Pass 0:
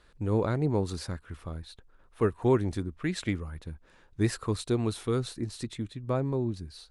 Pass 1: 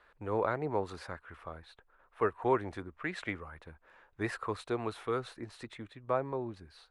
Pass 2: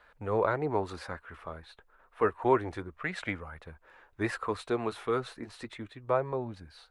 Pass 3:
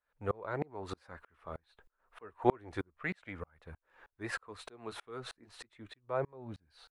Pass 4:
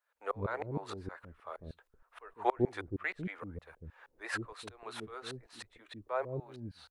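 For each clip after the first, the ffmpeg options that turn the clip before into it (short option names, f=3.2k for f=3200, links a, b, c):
-filter_complex "[0:a]acrossover=split=510 2500:gain=0.141 1 0.126[a][b][c];[a][b][c]amix=inputs=3:normalize=0,volume=3.5dB"
-af "flanger=delay=1.3:depth=3.6:regen=-62:speed=0.3:shape=sinusoidal,volume=7.5dB"
-af "aeval=exprs='val(0)*pow(10,-35*if(lt(mod(-3.2*n/s,1),2*abs(-3.2)/1000),1-mod(-3.2*n/s,1)/(2*abs(-3.2)/1000),(mod(-3.2*n/s,1)-2*abs(-3.2)/1000)/(1-2*abs(-3.2)/1000))/20)':c=same,volume=3.5dB"
-filter_complex "[0:a]acrossover=split=440[a][b];[a]adelay=150[c];[c][b]amix=inputs=2:normalize=0,volume=2dB"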